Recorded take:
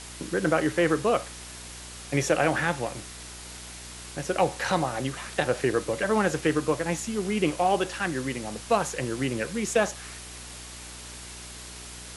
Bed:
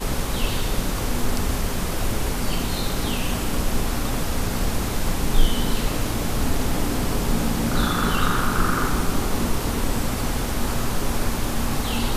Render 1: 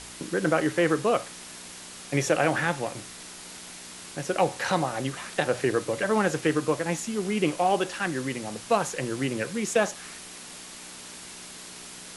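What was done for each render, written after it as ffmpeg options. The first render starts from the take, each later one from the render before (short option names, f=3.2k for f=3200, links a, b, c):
-af "bandreject=f=60:t=h:w=4,bandreject=f=120:t=h:w=4"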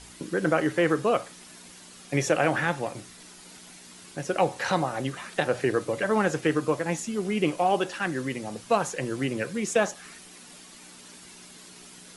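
-af "afftdn=nr=8:nf=-43"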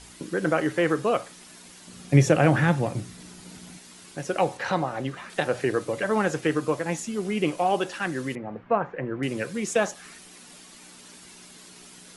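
-filter_complex "[0:a]asettb=1/sr,asplit=3[a][b][c];[a]atrim=end=1.874[d];[b]atrim=start=1.87:end=3.79,asetpts=PTS-STARTPTS,afade=t=in:d=0.004:c=qsin,afade=t=out:st=1.916:d=0.004:c=qsin,equalizer=f=110:t=o:w=2.7:g=13.5[e];[c]atrim=start=3.786[f];[d][e]acrossfade=d=0.004:c1=hsin:c2=qsin[g];[g][f]acrossfade=d=0.004:c1=qsin:c2=hsin,asettb=1/sr,asplit=3[h][i][j];[h]atrim=end=4.574[k];[i]atrim=start=4.57:end=5.3,asetpts=PTS-STARTPTS,afade=t=in:d=0.004:c=qsin,afade=t=out:st=0.726:d=0.004:c=qsin,highshelf=f=5.5k:g=-11[l];[j]atrim=start=5.296[m];[k][l]acrossfade=d=0.004:c1=hsin:c2=qsin[n];[n][m]acrossfade=d=0.004:c1=qsin:c2=hsin,asettb=1/sr,asplit=3[o][p][q];[o]atrim=end=8.354[r];[p]atrim=start=8.35:end=9.23,asetpts=PTS-STARTPTS,afade=t=in:d=0.004:c=qsin,afade=t=out:st=0.876:d=0.004:c=qsin,lowpass=f=2k:w=0.5412,lowpass=f=2k:w=1.3066[s];[q]atrim=start=9.226[t];[r][s]acrossfade=d=0.004:c1=hsin:c2=qsin[u];[u][t]acrossfade=d=0.004:c1=qsin:c2=hsin"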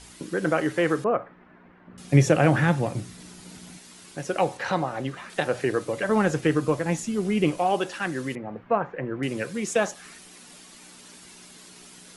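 -filter_complex "[0:a]asettb=1/sr,asplit=3[a][b][c];[a]atrim=end=1.044[d];[b]atrim=start=1.04:end=1.98,asetpts=PTS-STARTPTS,afade=t=in:d=0.004:c=qsin,afade=t=out:st=0.936:d=0.004:c=qsin,lowpass=f=1.8k:w=0.5412,lowpass=f=1.8k:w=1.3066[e];[c]atrim=start=1.976[f];[d][e]acrossfade=d=0.004:c1=hsin:c2=qsin[g];[g][f]acrossfade=d=0.004:c1=qsin:c2=hsin,asettb=1/sr,asplit=3[h][i][j];[h]atrim=end=6.094[k];[i]atrim=start=6.09:end=7.6,asetpts=PTS-STARTPTS,afade=t=in:d=0.004:c=qsin,afade=t=out:st=1.506:d=0.004:c=qsin,lowshelf=f=190:g=9[l];[j]atrim=start=7.596[m];[k][l]acrossfade=d=0.004:c1=hsin:c2=qsin[n];[n][m]acrossfade=d=0.004:c1=qsin:c2=hsin"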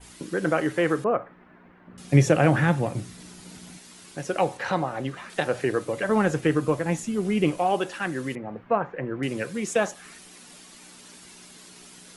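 -af "adynamicequalizer=threshold=0.00447:dfrequency=5100:dqfactor=1.2:tfrequency=5100:tqfactor=1.2:attack=5:release=100:ratio=0.375:range=2:mode=cutabove:tftype=bell"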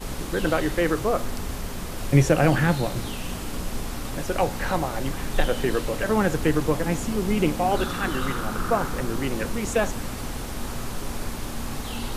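-filter_complex "[1:a]volume=-7.5dB[a];[0:a][a]amix=inputs=2:normalize=0"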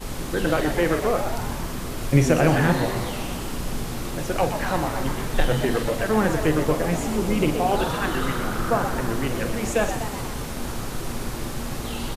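-filter_complex "[0:a]asplit=2[a][b];[b]adelay=46,volume=-10.5dB[c];[a][c]amix=inputs=2:normalize=0,asplit=9[d][e][f][g][h][i][j][k][l];[e]adelay=123,afreqshift=110,volume=-9dB[m];[f]adelay=246,afreqshift=220,volume=-13.3dB[n];[g]adelay=369,afreqshift=330,volume=-17.6dB[o];[h]adelay=492,afreqshift=440,volume=-21.9dB[p];[i]adelay=615,afreqshift=550,volume=-26.2dB[q];[j]adelay=738,afreqshift=660,volume=-30.5dB[r];[k]adelay=861,afreqshift=770,volume=-34.8dB[s];[l]adelay=984,afreqshift=880,volume=-39.1dB[t];[d][m][n][o][p][q][r][s][t]amix=inputs=9:normalize=0"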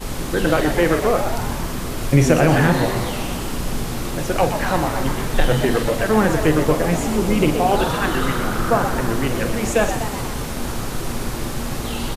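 -af "volume=4.5dB,alimiter=limit=-3dB:level=0:latency=1"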